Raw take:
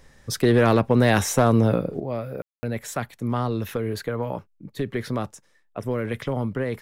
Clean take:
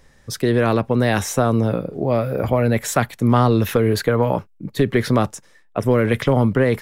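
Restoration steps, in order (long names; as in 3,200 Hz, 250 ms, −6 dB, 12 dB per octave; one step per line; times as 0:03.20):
clipped peaks rebuilt −9 dBFS
ambience match 0:02.42–0:02.63
level 0 dB, from 0:02.00 +10 dB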